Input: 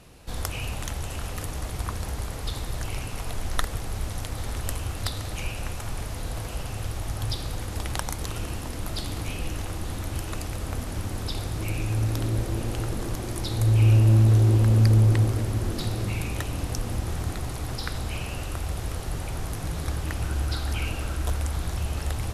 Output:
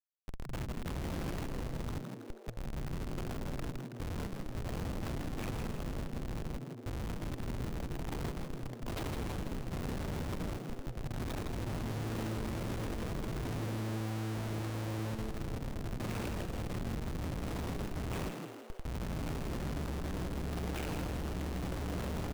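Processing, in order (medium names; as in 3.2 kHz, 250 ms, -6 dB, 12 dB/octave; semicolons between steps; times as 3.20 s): tracing distortion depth 0.39 ms; low-pass 3.6 kHz 24 dB/octave; bass shelf 200 Hz -11.5 dB; de-hum 204.1 Hz, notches 34; peak limiter -25 dBFS, peak gain reduction 11.5 dB; random-step tremolo, depth 70%; Schmitt trigger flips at -37 dBFS; frequency-shifting echo 162 ms, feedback 53%, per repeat +110 Hz, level -6 dB; trim +1.5 dB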